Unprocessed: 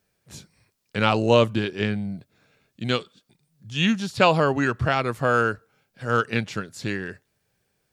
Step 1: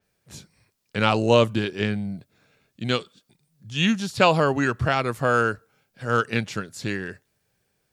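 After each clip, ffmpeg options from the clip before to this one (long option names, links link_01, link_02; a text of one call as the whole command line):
ffmpeg -i in.wav -af "adynamicequalizer=threshold=0.0126:dfrequency=5500:dqfactor=0.7:tfrequency=5500:tqfactor=0.7:attack=5:release=100:ratio=0.375:range=2:mode=boostabove:tftype=highshelf" out.wav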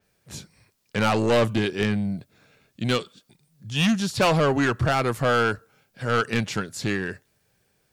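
ffmpeg -i in.wav -af "asoftclip=type=tanh:threshold=-19.5dB,volume=4dB" out.wav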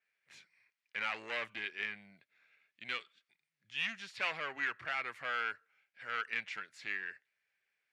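ffmpeg -i in.wav -af "bandpass=frequency=2100:width_type=q:width=3.2:csg=0,volume=-3.5dB" out.wav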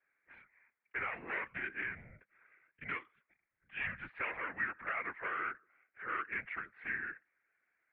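ffmpeg -i in.wav -filter_complex "[0:a]highpass=frequency=170:width_type=q:width=0.5412,highpass=frequency=170:width_type=q:width=1.307,lowpass=frequency=2200:width_type=q:width=0.5176,lowpass=frequency=2200:width_type=q:width=0.7071,lowpass=frequency=2200:width_type=q:width=1.932,afreqshift=-84,acrossover=split=740|1600[link_01][link_02][link_03];[link_01]acompressor=threshold=-54dB:ratio=4[link_04];[link_02]acompressor=threshold=-52dB:ratio=4[link_05];[link_03]acompressor=threshold=-42dB:ratio=4[link_06];[link_04][link_05][link_06]amix=inputs=3:normalize=0,afftfilt=real='hypot(re,im)*cos(2*PI*random(0))':imag='hypot(re,im)*sin(2*PI*random(1))':win_size=512:overlap=0.75,volume=11.5dB" out.wav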